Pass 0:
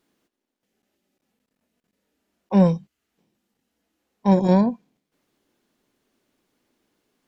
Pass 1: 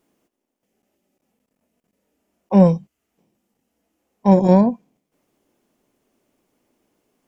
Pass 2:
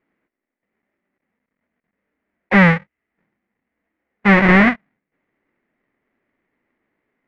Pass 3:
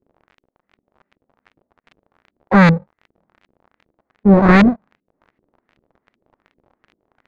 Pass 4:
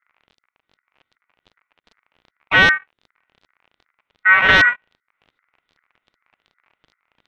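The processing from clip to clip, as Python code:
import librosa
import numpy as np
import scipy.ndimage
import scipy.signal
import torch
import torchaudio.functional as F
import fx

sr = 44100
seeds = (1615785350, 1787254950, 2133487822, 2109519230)

y1 = fx.graphic_eq_15(x, sr, hz=(630, 1600, 4000), db=(3, -5, -8))
y1 = y1 * 10.0 ** (3.5 / 20.0)
y2 = fx.halfwave_hold(y1, sr)
y2 = fx.leveller(y2, sr, passes=2)
y2 = fx.lowpass_res(y2, sr, hz=2000.0, q=5.5)
y2 = y2 * 10.0 ** (-7.5 / 20.0)
y3 = fx.halfwave_hold(y2, sr)
y3 = fx.dmg_crackle(y3, sr, seeds[0], per_s=39.0, level_db=-27.0)
y3 = fx.filter_lfo_lowpass(y3, sr, shape='saw_up', hz=2.6, low_hz=320.0, high_hz=2900.0, q=1.4)
y3 = y3 * 10.0 ** (-3.5 / 20.0)
y4 = y3 * np.sin(2.0 * np.pi * 1700.0 * np.arange(len(y3)) / sr)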